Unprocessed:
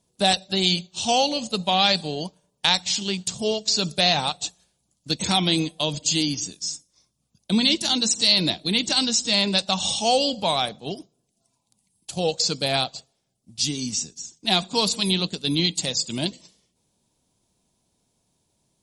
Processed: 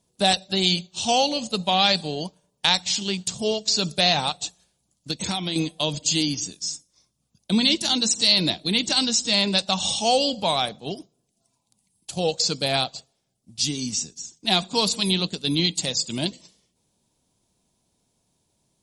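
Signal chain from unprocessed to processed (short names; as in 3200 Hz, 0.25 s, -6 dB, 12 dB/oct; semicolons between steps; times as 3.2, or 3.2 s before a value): 4.31–5.56 compressor 6:1, threshold -24 dBFS, peak gain reduction 8.5 dB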